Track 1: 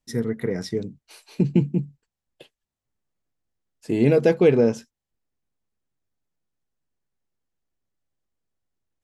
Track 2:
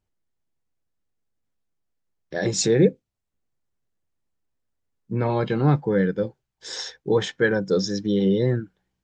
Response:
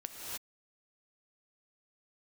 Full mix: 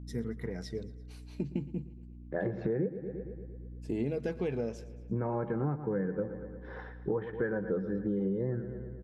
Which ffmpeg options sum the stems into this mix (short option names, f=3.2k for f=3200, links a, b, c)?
-filter_complex "[0:a]highshelf=f=8.1k:g=-5,aeval=exprs='val(0)+0.0178*(sin(2*PI*60*n/s)+sin(2*PI*2*60*n/s)/2+sin(2*PI*3*60*n/s)/3+sin(2*PI*4*60*n/s)/4+sin(2*PI*5*60*n/s)/5)':c=same,aphaser=in_gain=1:out_gain=1:delay=4.6:decay=0.33:speed=0.25:type=triangular,volume=-11dB,asplit=2[a][b];[b]volume=-20.5dB[c];[1:a]lowpass=f=1.6k:w=0.5412,lowpass=f=1.6k:w=1.3066,volume=-2.5dB,asplit=3[d][e][f];[e]volume=-14dB[g];[f]apad=whole_len=398446[h];[a][h]sidechaincompress=threshold=-26dB:ratio=8:attack=16:release=390[i];[c][g]amix=inputs=2:normalize=0,aecho=0:1:114|228|342|456|570|684|798|912|1026|1140:1|0.6|0.36|0.216|0.13|0.0778|0.0467|0.028|0.0168|0.0101[j];[i][d][j]amix=inputs=3:normalize=0,acompressor=threshold=-29dB:ratio=6"